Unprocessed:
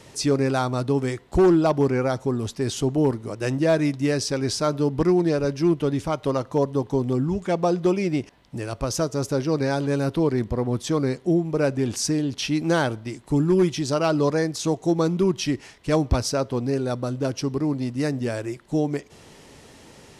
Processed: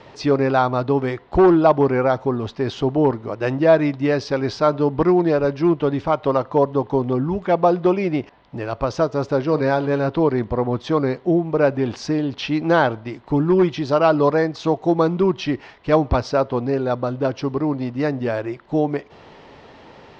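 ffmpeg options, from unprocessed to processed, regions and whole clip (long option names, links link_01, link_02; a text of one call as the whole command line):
ffmpeg -i in.wav -filter_complex "[0:a]asettb=1/sr,asplit=3[link_01][link_02][link_03];[link_01]atrim=end=9.424[link_04];[link_02]atrim=start=9.42:end=10.08,asetpts=PTS-STARTPTS,afade=type=in:duration=0.004:curve=qsin,afade=type=out:start_time=0.656:duration=0.004:curve=qsin,bandreject=frequency=800:width=20,asplit=2[link_05][link_06];[link_06]adelay=45,volume=-14dB[link_07];[link_05][link_07]amix=inputs=2:normalize=0,atrim=end_sample=29106[link_08];[link_03]atrim=start=10.076[link_09];[link_04][link_08]acrossfade=duration=0.004:curve1=hsin:curve2=qsin[link_10];[link_10][link_09]acrossfade=duration=0.004:curve1=qsin:curve2=hsin,lowpass=frequency=4400:width=0.5412,lowpass=frequency=4400:width=1.3066,equalizer=frequency=870:width_type=o:width=2.1:gain=8.5" out.wav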